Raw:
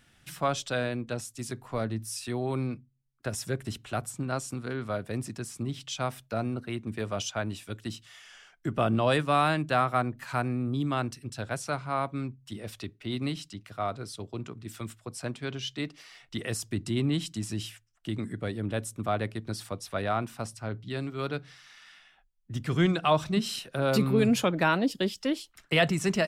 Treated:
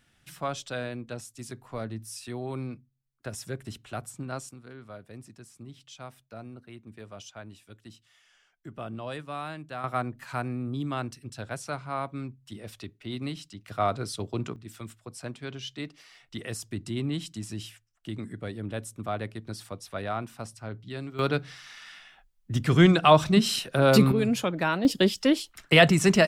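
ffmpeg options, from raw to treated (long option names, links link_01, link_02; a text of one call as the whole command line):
ffmpeg -i in.wav -af "asetnsamples=nb_out_samples=441:pad=0,asendcmd='4.49 volume volume -12dB;9.84 volume volume -2.5dB;13.68 volume volume 5.5dB;14.56 volume volume -3dB;21.19 volume volume 6.5dB;24.12 volume volume -2dB;24.85 volume volume 6.5dB',volume=-4dB" out.wav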